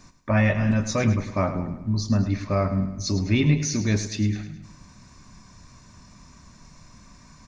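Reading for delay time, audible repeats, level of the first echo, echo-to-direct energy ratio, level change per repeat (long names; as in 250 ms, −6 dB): 105 ms, 4, −11.0 dB, −10.0 dB, −6.0 dB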